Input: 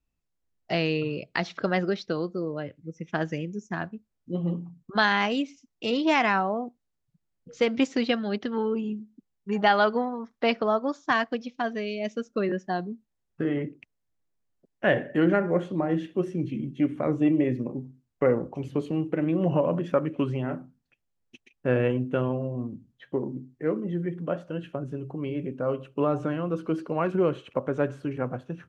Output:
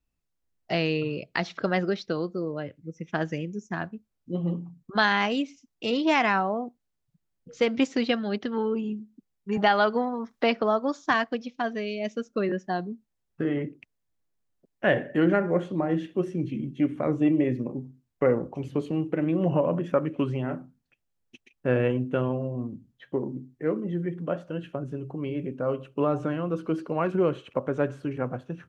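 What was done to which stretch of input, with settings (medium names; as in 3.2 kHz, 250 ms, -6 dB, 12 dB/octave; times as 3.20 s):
9.57–11.14 s: three bands compressed up and down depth 40%
19.50–20.00 s: peaking EQ 4.3 kHz -5.5 dB 0.73 oct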